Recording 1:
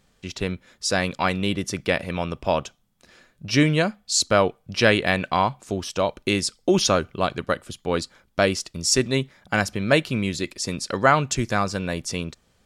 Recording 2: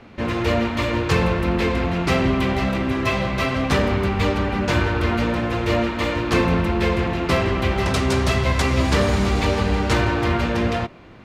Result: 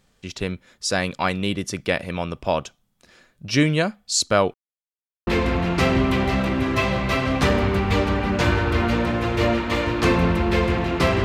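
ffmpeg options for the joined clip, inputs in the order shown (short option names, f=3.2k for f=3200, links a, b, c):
-filter_complex "[0:a]apad=whole_dur=11.24,atrim=end=11.24,asplit=2[a][b];[a]atrim=end=4.54,asetpts=PTS-STARTPTS,afade=t=out:st=4.536:d=0.004:c=hsin[c];[b]atrim=start=4.54:end=5.27,asetpts=PTS-STARTPTS,volume=0[d];[1:a]atrim=start=1.56:end=7.53,asetpts=PTS-STARTPTS,afade=t=in:d=0.004:c=hsin[e];[c][d][e]concat=n=3:v=0:a=1"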